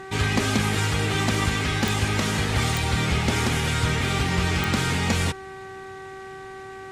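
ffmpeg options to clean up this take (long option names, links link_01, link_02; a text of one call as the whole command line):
ffmpeg -i in.wav -af "adeclick=threshold=4,bandreject=frequency=383.8:width_type=h:width=4,bandreject=frequency=767.6:width_type=h:width=4,bandreject=frequency=1151.4:width_type=h:width=4,bandreject=frequency=1535.2:width_type=h:width=4,bandreject=frequency=1919:width_type=h:width=4" out.wav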